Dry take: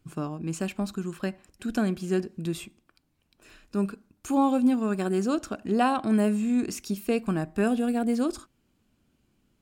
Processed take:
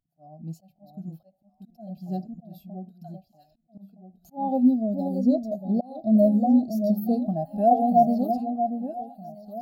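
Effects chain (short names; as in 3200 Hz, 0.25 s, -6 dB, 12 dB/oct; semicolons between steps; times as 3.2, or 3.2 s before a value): EQ curve 250 Hz 0 dB, 380 Hz -12 dB, 710 Hz +14 dB, 1100 Hz -14 dB, 2300 Hz -13 dB, 4500 Hz +6 dB, 8400 Hz -8 dB, 13000 Hz +15 dB; echo with dull and thin repeats by turns 0.634 s, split 890 Hz, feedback 67%, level -4.5 dB; spectral gain 4.67–7.27, 680–3400 Hz -9 dB; auto swell 0.273 s; spectral expander 1.5:1; gain +2 dB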